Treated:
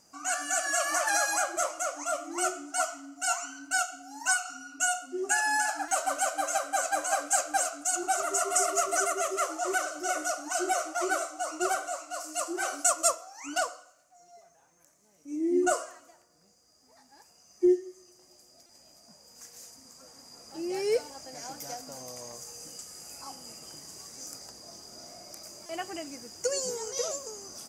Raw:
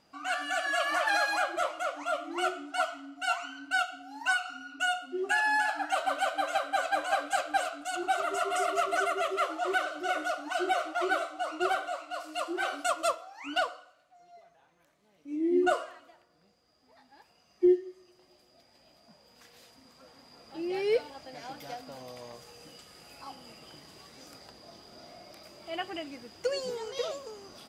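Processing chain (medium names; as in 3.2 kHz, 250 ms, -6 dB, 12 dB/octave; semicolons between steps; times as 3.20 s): resonant high shelf 4.8 kHz +10.5 dB, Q 3; buffer glitch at 5.88/18.66/25.66 s, samples 128, times 10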